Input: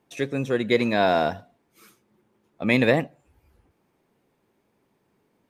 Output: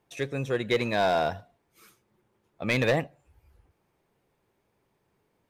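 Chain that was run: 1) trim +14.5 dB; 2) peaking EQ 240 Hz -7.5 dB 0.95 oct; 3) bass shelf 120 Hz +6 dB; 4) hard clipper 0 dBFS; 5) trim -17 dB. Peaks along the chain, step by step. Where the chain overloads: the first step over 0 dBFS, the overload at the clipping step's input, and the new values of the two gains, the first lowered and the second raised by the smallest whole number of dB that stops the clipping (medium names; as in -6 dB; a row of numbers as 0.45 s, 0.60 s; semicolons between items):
+9.0 dBFS, +8.0 dBFS, +8.0 dBFS, 0.0 dBFS, -17.0 dBFS; step 1, 8.0 dB; step 1 +6.5 dB, step 5 -9 dB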